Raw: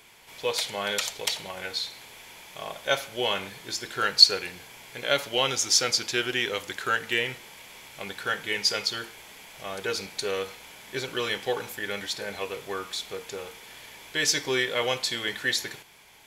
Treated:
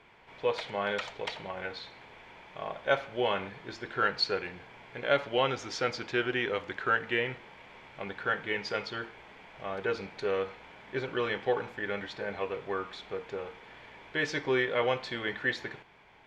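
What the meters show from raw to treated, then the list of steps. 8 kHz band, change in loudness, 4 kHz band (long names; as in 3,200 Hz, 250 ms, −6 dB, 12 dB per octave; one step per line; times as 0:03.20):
−22.5 dB, −6.0 dB, −13.0 dB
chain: low-pass filter 1,900 Hz 12 dB per octave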